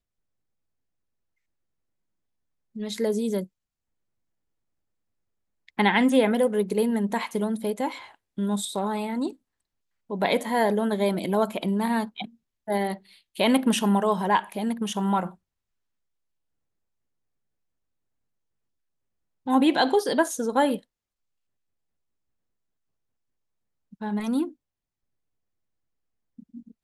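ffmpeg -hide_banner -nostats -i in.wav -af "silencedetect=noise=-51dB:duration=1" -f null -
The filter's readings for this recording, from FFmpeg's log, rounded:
silence_start: 0.00
silence_end: 2.75 | silence_duration: 2.75
silence_start: 3.47
silence_end: 5.68 | silence_duration: 2.22
silence_start: 15.35
silence_end: 19.46 | silence_duration: 4.11
silence_start: 20.83
silence_end: 23.92 | silence_duration: 3.09
silence_start: 24.54
silence_end: 26.38 | silence_duration: 1.85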